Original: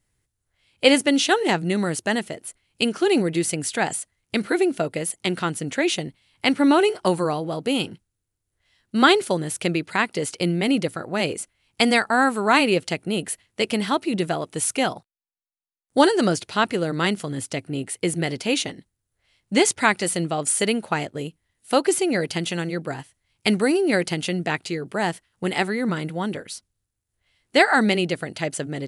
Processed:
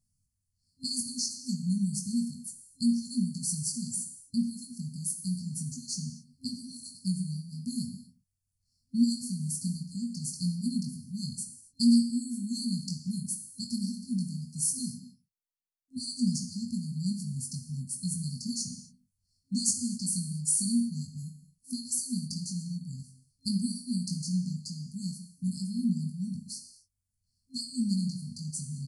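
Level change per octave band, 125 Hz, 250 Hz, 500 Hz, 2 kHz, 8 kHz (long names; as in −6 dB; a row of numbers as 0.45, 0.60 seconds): −4.0 dB, −6.5 dB, below −40 dB, below −40 dB, −3.5 dB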